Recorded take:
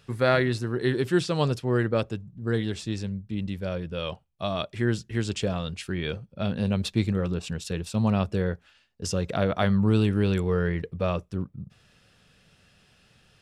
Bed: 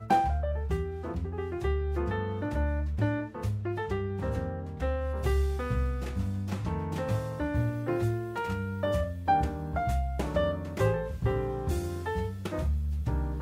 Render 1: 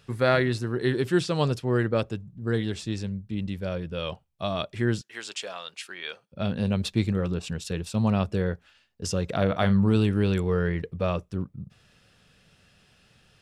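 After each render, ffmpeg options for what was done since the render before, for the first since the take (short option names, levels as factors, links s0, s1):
-filter_complex "[0:a]asettb=1/sr,asplit=3[s0][s1][s2];[s0]atrim=end=5.014[s3];[s1]atrim=start=5.01:end=6.32,asetpts=PTS-STARTPTS,afade=t=in:d=0.004:c=qsin,afade=t=out:st=1.306:d=0.004:c=qsin,highpass=820[s4];[s2]atrim=start=6.316[s5];[s3][s4]acrossfade=d=0.004:c1=hsin:c2=qsin[s6];[s6][s5]acrossfade=d=0.004:c1=qsin:c2=hsin,asettb=1/sr,asplit=3[s7][s8][s9];[s7]atrim=end=9.344[s10];[s8]atrim=start=9.34:end=9.96,asetpts=PTS-STARTPTS,afade=t=in:d=0.004:c=qsin,afade=t=out:st=0.616:d=0.004:c=qsin,asplit=2[s11][s12];[s12]adelay=41,volume=0.224[s13];[s11][s13]amix=inputs=2:normalize=0,atrim=end_sample=27342[s14];[s9]atrim=start=9.956[s15];[s10][s14]acrossfade=d=0.004:c1=hsin:c2=qsin[s16];[s16][s15]acrossfade=d=0.004:c1=qsin:c2=hsin"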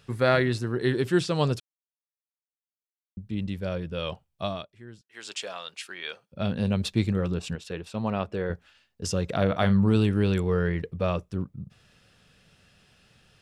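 -filter_complex "[0:a]asettb=1/sr,asplit=3[s0][s1][s2];[s0]atrim=end=7.554[s3];[s1]atrim=start=7.55:end=8.5,asetpts=PTS-STARTPTS,afade=t=in:d=0.004:c=qsin,afade=t=out:st=0.946:d=0.004:c=qsin,bass=f=250:g=-9,treble=f=4000:g=-11[s4];[s2]atrim=start=8.496[s5];[s3][s4]acrossfade=d=0.004:c1=hsin:c2=qsin[s6];[s6][s5]acrossfade=d=0.004:c1=qsin:c2=hsin,asplit=5[s7][s8][s9][s10][s11];[s7]atrim=end=1.6,asetpts=PTS-STARTPTS,afade=t=out:st=1.596:d=0.004:c=hsin[s12];[s8]atrim=start=1.6:end=3.17,asetpts=PTS-STARTPTS,volume=0[s13];[s9]atrim=start=3.17:end=4.68,asetpts=PTS-STARTPTS,afade=t=in:d=0.004:c=hsin,afade=t=out:st=1.27:d=0.24:silence=0.0944061[s14];[s10]atrim=start=4.68:end=5.08,asetpts=PTS-STARTPTS,volume=0.0944[s15];[s11]atrim=start=5.08,asetpts=PTS-STARTPTS,afade=t=in:d=0.24:silence=0.0944061[s16];[s12][s13][s14][s15][s16]concat=n=5:v=0:a=1"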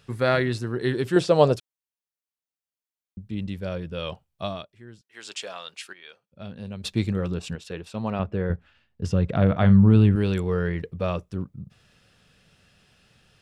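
-filter_complex "[0:a]asettb=1/sr,asplit=3[s0][s1][s2];[s0]atrim=end=1.164[s3];[s1]atrim=start=1.16:end=1.56,asetpts=PTS-STARTPTS,afade=t=in:d=0.004:c=qsin,afade=t=out:st=0.396:d=0.004:c=qsin,equalizer=f=590:w=1.1:g=13[s4];[s2]atrim=start=1.556[s5];[s3][s4]acrossfade=d=0.004:c1=hsin:c2=qsin[s6];[s6][s5]acrossfade=d=0.004:c1=qsin:c2=hsin,asettb=1/sr,asplit=3[s7][s8][s9];[s7]atrim=end=8.194[s10];[s8]atrim=start=8.19:end=10.16,asetpts=PTS-STARTPTS,afade=t=in:d=0.004:c=qsin,afade=t=out:st=1.966:d=0.004:c=qsin,bass=f=250:g=8,treble=f=4000:g=-13[s11];[s9]atrim=start=10.156[s12];[s10][s11]acrossfade=d=0.004:c1=hsin:c2=qsin[s13];[s13][s12]acrossfade=d=0.004:c1=qsin:c2=hsin,asplit=3[s14][s15][s16];[s14]atrim=end=5.932[s17];[s15]atrim=start=5.928:end=6.842,asetpts=PTS-STARTPTS,volume=0.299[s18];[s16]atrim=start=6.838[s19];[s17][s18]acrossfade=d=0.004:c1=hsin:c2=hsin[s20];[s20][s19]acrossfade=d=0.004:c1=hsin:c2=hsin"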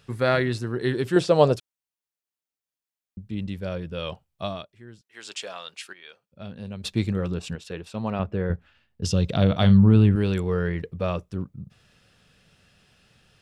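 -filter_complex "[0:a]asettb=1/sr,asplit=3[s0][s1][s2];[s0]atrim=end=9.034[s3];[s1]atrim=start=9.03:end=9.78,asetpts=PTS-STARTPTS,afade=t=in:d=0.004:c=qsin,afade=t=out:st=0.746:d=0.004:c=qsin,highshelf=f=2600:t=q:w=1.5:g=10[s4];[s2]atrim=start=9.776[s5];[s3][s4]acrossfade=d=0.004:c1=hsin:c2=qsin[s6];[s6][s5]acrossfade=d=0.004:c1=qsin:c2=hsin"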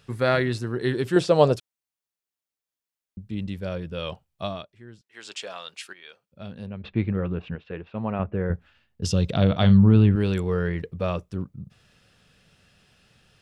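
-filter_complex "[0:a]asettb=1/sr,asplit=3[s0][s1][s2];[s0]atrim=end=4.474[s3];[s1]atrim=start=4.47:end=5.51,asetpts=PTS-STARTPTS,afade=t=in:d=0.004:c=qsin,afade=t=out:st=1.036:d=0.004:c=qsin,highshelf=f=7800:g=-6[s4];[s2]atrim=start=5.506[s5];[s3][s4]acrossfade=d=0.004:c1=hsin:c2=qsin[s6];[s6][s5]acrossfade=d=0.004:c1=qsin:c2=hsin,asplit=3[s7][s8][s9];[s7]afade=t=out:st=6.65:d=0.02[s10];[s8]lowpass=f=2600:w=0.5412,lowpass=f=2600:w=1.3066,afade=t=in:st=6.65:d=0.02,afade=t=out:st=8.54:d=0.02[s11];[s9]afade=t=in:st=8.54:d=0.02[s12];[s10][s11][s12]amix=inputs=3:normalize=0,asettb=1/sr,asplit=3[s13][s14][s15];[s13]atrim=end=9.314[s16];[s14]atrim=start=9.31:end=10.2,asetpts=PTS-STARTPTS,afade=t=in:d=0.004:c=qsin,afade=t=out:st=0.886:d=0.004:c=qsin,lowpass=5700[s17];[s15]atrim=start=10.196[s18];[s16][s17]acrossfade=d=0.004:c1=hsin:c2=qsin[s19];[s19][s18]acrossfade=d=0.004:c1=qsin:c2=hsin"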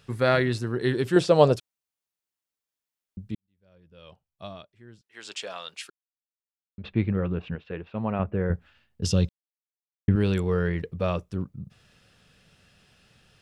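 -filter_complex "[0:a]asplit=6[s0][s1][s2][s3][s4][s5];[s0]atrim=end=3.35,asetpts=PTS-STARTPTS,afade=t=out:st=3.346:d=0.004:c=hsin[s6];[s1]atrim=start=3.35:end=5.9,asetpts=PTS-STARTPTS,afade=t=in:d=1.9:c=qua,afade=t=out:st=2.546:d=0.004:c=hsin[s7];[s2]atrim=start=5.9:end=6.78,asetpts=PTS-STARTPTS,volume=0[s8];[s3]atrim=start=6.78:end=9.29,asetpts=PTS-STARTPTS,afade=t=in:d=0.004:c=hsin,afade=t=out:st=2.506:d=0.004:c=hsin[s9];[s4]atrim=start=9.29:end=10.08,asetpts=PTS-STARTPTS,volume=0[s10];[s5]atrim=start=10.08,asetpts=PTS-STARTPTS,afade=t=in:d=0.004:c=hsin[s11];[s6][s7][s8][s9][s10][s11]concat=n=6:v=0:a=1"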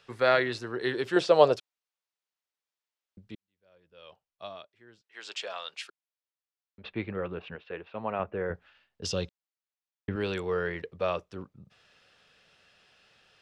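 -filter_complex "[0:a]acrossover=split=370 6300:gain=0.178 1 0.224[s0][s1][s2];[s0][s1][s2]amix=inputs=3:normalize=0"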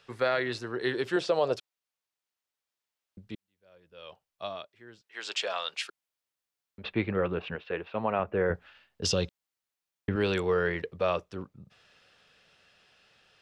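-af "dynaudnorm=f=330:g=17:m=1.88,alimiter=limit=0.158:level=0:latency=1:release=169"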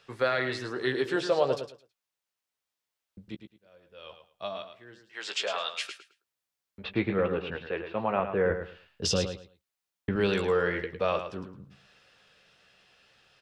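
-filter_complex "[0:a]asplit=2[s0][s1];[s1]adelay=15,volume=0.355[s2];[s0][s2]amix=inputs=2:normalize=0,aecho=1:1:108|216|324:0.355|0.0745|0.0156"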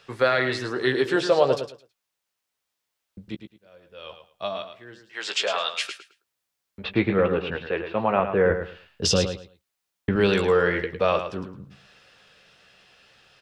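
-af "volume=2"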